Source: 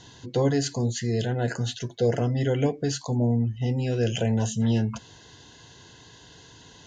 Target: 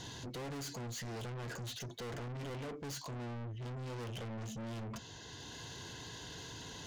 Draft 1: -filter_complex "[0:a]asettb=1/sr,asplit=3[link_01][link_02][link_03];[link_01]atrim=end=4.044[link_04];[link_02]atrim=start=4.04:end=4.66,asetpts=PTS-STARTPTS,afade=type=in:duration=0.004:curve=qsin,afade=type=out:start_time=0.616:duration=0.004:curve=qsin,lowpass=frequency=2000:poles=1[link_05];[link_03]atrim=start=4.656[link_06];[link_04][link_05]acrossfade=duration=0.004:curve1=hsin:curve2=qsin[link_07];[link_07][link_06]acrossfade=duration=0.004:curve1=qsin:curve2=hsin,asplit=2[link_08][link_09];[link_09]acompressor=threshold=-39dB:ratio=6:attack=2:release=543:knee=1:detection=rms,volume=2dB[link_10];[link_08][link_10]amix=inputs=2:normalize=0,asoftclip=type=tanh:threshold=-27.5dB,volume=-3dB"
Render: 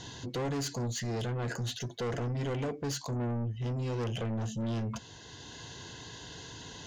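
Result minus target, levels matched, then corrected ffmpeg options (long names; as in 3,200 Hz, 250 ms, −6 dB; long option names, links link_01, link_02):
soft clipping: distortion −5 dB
-filter_complex "[0:a]asettb=1/sr,asplit=3[link_01][link_02][link_03];[link_01]atrim=end=4.044[link_04];[link_02]atrim=start=4.04:end=4.66,asetpts=PTS-STARTPTS,afade=type=in:duration=0.004:curve=qsin,afade=type=out:start_time=0.616:duration=0.004:curve=qsin,lowpass=frequency=2000:poles=1[link_05];[link_03]atrim=start=4.656[link_06];[link_04][link_05]acrossfade=duration=0.004:curve1=hsin:curve2=qsin[link_07];[link_07][link_06]acrossfade=duration=0.004:curve1=qsin:curve2=hsin,asplit=2[link_08][link_09];[link_09]acompressor=threshold=-39dB:ratio=6:attack=2:release=543:knee=1:detection=rms,volume=2dB[link_10];[link_08][link_10]amix=inputs=2:normalize=0,asoftclip=type=tanh:threshold=-38.5dB,volume=-3dB"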